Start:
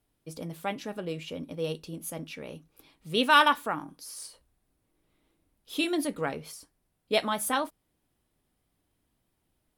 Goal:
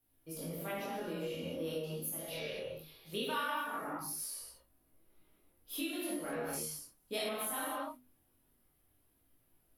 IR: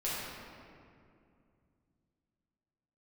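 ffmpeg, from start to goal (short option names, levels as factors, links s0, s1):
-filter_complex "[1:a]atrim=start_sample=2205,afade=t=out:st=0.21:d=0.01,atrim=end_sample=9702,asetrate=26019,aresample=44100[s0];[0:a][s0]afir=irnorm=-1:irlink=0,aexciter=amount=4.1:drive=9.2:freq=11000,bandreject=f=50:t=h:w=6,bandreject=f=100:t=h:w=6,bandreject=f=150:t=h:w=6,bandreject=f=200:t=h:w=6,bandreject=f=250:t=h:w=6,acompressor=threshold=0.0355:ratio=4,asettb=1/sr,asplit=3[s1][s2][s3];[s1]atrim=end=2.184[s4];[s2]atrim=start=2.18:end=3.13,asetpts=PTS-STARTPTS,afade=t=in:d=0.004:c=qsin,afade=t=out:st=0.946:d=0.004:c=qsin,equalizer=f=250:t=o:w=1:g=-11,equalizer=f=500:t=o:w=1:g=6,equalizer=f=1000:t=o:w=1:g=-5,equalizer=f=4000:t=o:w=1:g=10,equalizer=f=8000:t=o:w=1:g=-3,equalizer=f=16000:t=o:w=1:g=-8[s5];[s3]atrim=start=3.126[s6];[s4][s5]acrossfade=d=0.004:c1=hsin:c2=qsin[s7];[s7][s6]acrossfade=d=0.004:c1=qsin:c2=hsin,flanger=delay=18.5:depth=8:speed=0.21,asettb=1/sr,asplit=3[s8][s9][s10];[s8]atrim=end=3.644[s11];[s9]atrim=start=3.64:end=4.2,asetpts=PTS-STARTPTS,afade=t=in:d=0.004:c=qsin,afade=t=out:st=0.556:d=0.004:c=qsin,bandreject=f=3100:w=6.5[s12];[s10]atrim=start=4.196[s13];[s11][s12]acrossfade=d=0.004:c1=hsin:c2=qsin[s14];[s14][s13]acrossfade=d=0.004:c1=qsin:c2=hsin,asettb=1/sr,asplit=3[s15][s16][s17];[s15]atrim=end=6.534[s18];[s16]atrim=start=6.53:end=7.29,asetpts=PTS-STARTPTS,afade=t=in:d=0.004:c=qsin,afade=t=out:st=0.756:d=0.004:c=qsin,equalizer=f=7100:t=o:w=1.4:g=9[s19];[s17]atrim=start=7.286[s20];[s18][s19]acrossfade=d=0.004:c1=hsin:c2=qsin[s21];[s21][s20]acrossfade=d=0.004:c1=qsin:c2=hsin,volume=0.562"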